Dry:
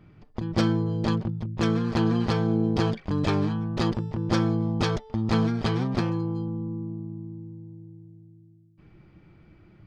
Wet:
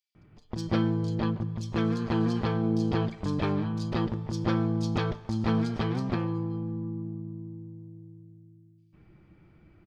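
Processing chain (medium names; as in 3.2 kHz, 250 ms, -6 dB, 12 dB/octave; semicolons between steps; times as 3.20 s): bands offset in time highs, lows 150 ms, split 4.4 kHz; on a send at -15 dB: reverberation RT60 2.1 s, pre-delay 7 ms; on the sum: trim -3.5 dB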